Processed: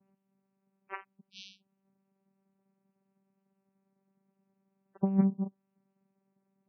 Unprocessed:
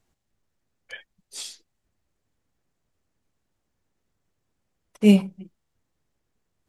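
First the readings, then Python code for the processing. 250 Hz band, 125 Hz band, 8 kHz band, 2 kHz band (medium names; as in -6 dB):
-9.5 dB, -6.5 dB, under -20 dB, -12.0 dB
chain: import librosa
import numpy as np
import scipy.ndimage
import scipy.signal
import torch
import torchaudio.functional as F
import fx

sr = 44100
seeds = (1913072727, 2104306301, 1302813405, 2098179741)

y = fx.spec_repair(x, sr, seeds[0], start_s=1.31, length_s=0.45, low_hz=280.0, high_hz=5600.0, source='both')
y = fx.vocoder(y, sr, bands=4, carrier='saw', carrier_hz=194.0)
y = fx.over_compress(y, sr, threshold_db=-26.0, ratio=-1.0)
y = fx.spec_topn(y, sr, count=32)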